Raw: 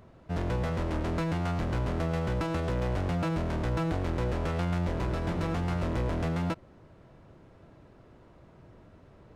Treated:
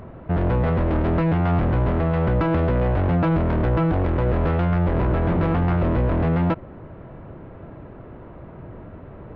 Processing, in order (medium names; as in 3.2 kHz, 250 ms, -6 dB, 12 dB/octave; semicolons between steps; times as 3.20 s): in parallel at +3 dB: peak limiter -28 dBFS, peak gain reduction 9.5 dB; on the sum: Gaussian low-pass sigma 3.5 samples; saturation -21 dBFS, distortion -17 dB; trim +7.5 dB